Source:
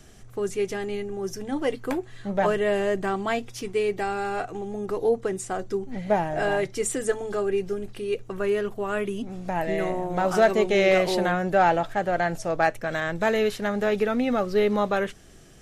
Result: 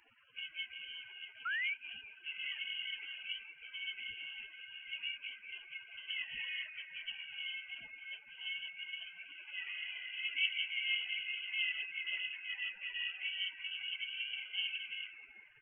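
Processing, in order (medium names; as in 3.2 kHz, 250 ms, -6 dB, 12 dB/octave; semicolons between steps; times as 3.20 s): spectrum inverted on a logarithmic axis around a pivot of 430 Hz; dynamic bell 990 Hz, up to +4 dB, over -40 dBFS, Q 1.2; spectral gate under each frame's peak -10 dB weak; repeats whose band climbs or falls 193 ms, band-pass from 590 Hz, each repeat 0.7 oct, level -5 dB; painted sound fall, 1.45–1.74 s, 760–1800 Hz -30 dBFS; frequency inversion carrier 3.1 kHz; trim -6.5 dB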